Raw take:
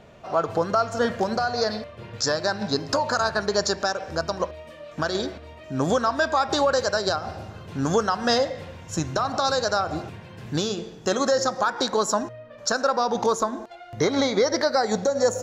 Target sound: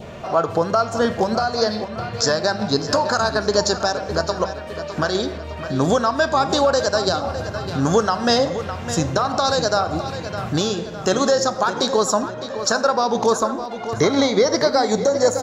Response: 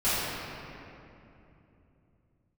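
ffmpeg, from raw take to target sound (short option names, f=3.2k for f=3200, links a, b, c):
-filter_complex "[0:a]highpass=48,asplit=2[a][b];[b]acompressor=mode=upward:threshold=-23dB:ratio=2.5,volume=-1dB[c];[a][c]amix=inputs=2:normalize=0,lowshelf=f=64:g=6,asplit=2[d][e];[e]adelay=609,lowpass=f=4.8k:p=1,volume=-11dB,asplit=2[f][g];[g]adelay=609,lowpass=f=4.8k:p=1,volume=0.49,asplit=2[h][i];[i]adelay=609,lowpass=f=4.8k:p=1,volume=0.49,asplit=2[j][k];[k]adelay=609,lowpass=f=4.8k:p=1,volume=0.49,asplit=2[l][m];[m]adelay=609,lowpass=f=4.8k:p=1,volume=0.49[n];[d][f][h][j][l][n]amix=inputs=6:normalize=0,asplit=2[o][p];[1:a]atrim=start_sample=2205,afade=t=out:st=0.16:d=0.01,atrim=end_sample=7497[q];[p][q]afir=irnorm=-1:irlink=0,volume=-25.5dB[r];[o][r]amix=inputs=2:normalize=0,adynamicequalizer=threshold=0.0316:dfrequency=1600:dqfactor=1.4:tfrequency=1600:tqfactor=1.4:attack=5:release=100:ratio=0.375:range=2:mode=cutabove:tftype=bell,volume=-1.5dB"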